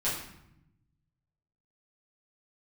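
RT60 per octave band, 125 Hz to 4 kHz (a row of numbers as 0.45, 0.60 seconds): 1.8, 1.3, 0.80, 0.80, 0.75, 0.60 seconds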